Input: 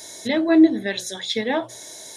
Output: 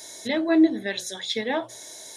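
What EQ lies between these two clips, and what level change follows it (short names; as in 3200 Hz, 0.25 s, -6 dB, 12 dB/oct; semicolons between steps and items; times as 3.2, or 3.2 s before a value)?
low shelf 260 Hz -4.5 dB; -2.5 dB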